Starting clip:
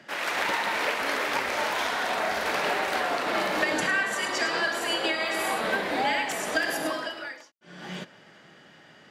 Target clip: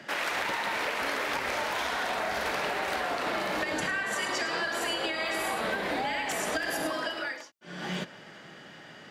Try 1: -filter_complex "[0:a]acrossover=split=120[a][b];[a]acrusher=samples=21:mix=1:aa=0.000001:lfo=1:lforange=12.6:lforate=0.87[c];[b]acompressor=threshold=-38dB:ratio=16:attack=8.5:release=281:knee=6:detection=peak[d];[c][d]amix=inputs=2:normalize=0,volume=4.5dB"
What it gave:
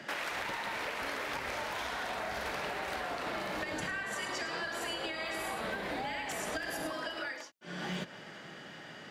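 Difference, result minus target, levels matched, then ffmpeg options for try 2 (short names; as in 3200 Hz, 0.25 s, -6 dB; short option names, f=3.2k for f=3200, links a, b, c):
compressor: peak gain reduction +6.5 dB
-filter_complex "[0:a]acrossover=split=120[a][b];[a]acrusher=samples=21:mix=1:aa=0.000001:lfo=1:lforange=12.6:lforate=0.87[c];[b]acompressor=threshold=-31dB:ratio=16:attack=8.5:release=281:knee=6:detection=peak[d];[c][d]amix=inputs=2:normalize=0,volume=4.5dB"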